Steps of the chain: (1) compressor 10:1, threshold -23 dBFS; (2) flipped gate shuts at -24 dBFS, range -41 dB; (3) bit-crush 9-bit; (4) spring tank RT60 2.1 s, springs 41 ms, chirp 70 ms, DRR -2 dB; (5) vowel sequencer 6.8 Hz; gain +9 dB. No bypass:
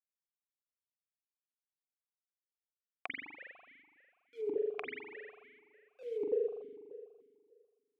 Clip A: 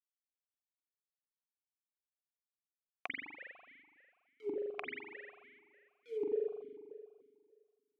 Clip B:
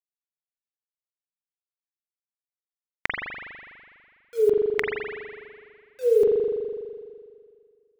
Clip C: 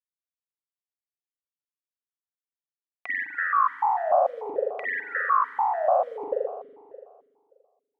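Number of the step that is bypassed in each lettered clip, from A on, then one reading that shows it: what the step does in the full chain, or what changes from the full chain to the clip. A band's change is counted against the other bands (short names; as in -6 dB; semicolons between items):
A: 1, mean gain reduction 3.0 dB; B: 5, 250 Hz band -4.0 dB; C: 2, momentary loudness spread change -11 LU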